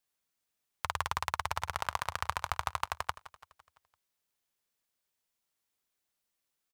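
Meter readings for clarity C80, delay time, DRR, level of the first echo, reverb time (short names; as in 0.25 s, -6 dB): none, 0.169 s, none, -17.0 dB, none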